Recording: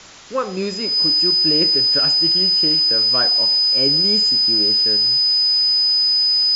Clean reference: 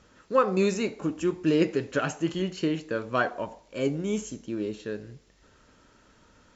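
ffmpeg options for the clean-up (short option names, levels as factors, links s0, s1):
-af "bandreject=f=5000:w=30,afwtdn=0.013,asetnsamples=n=441:p=0,asendcmd='3.53 volume volume -3dB',volume=1"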